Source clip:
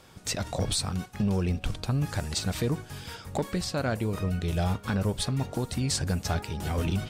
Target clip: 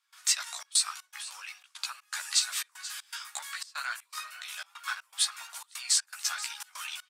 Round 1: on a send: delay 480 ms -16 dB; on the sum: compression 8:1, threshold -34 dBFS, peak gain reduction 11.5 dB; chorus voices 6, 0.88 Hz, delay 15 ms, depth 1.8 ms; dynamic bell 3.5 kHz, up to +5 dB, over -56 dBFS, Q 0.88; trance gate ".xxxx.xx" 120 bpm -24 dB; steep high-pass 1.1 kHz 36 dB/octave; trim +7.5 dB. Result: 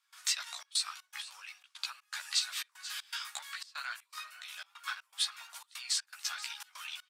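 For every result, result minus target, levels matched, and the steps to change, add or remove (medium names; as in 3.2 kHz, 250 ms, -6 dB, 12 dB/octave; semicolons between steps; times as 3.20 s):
compression: peak gain reduction +6.5 dB; 8 kHz band -3.0 dB
change: compression 8:1, threshold -26.5 dBFS, peak gain reduction 5 dB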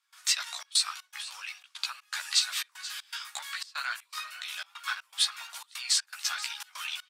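8 kHz band -3.0 dB
change: dynamic bell 8.3 kHz, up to +5 dB, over -56 dBFS, Q 0.88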